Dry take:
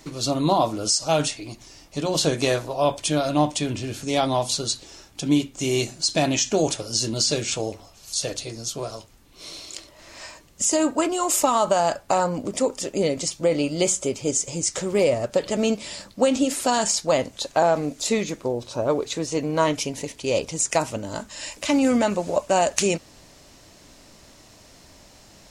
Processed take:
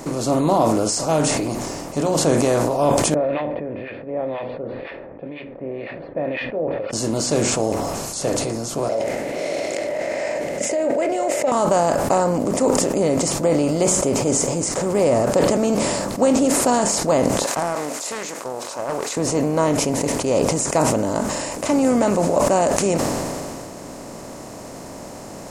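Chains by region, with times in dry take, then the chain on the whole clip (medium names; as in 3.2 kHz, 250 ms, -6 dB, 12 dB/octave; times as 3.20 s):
3.14–6.93 s: harmonic tremolo 2 Hz, depth 100%, crossover 1.7 kHz + cascade formant filter e
8.89–11.52 s: two resonant band-passes 1.1 kHz, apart 1.8 oct + level flattener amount 70%
17.44–19.17 s: high-pass 1.2 kHz + loudspeaker Doppler distortion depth 0.25 ms
whole clip: spectral levelling over time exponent 0.6; peaking EQ 3.7 kHz -12.5 dB 2 oct; decay stretcher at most 22 dB/s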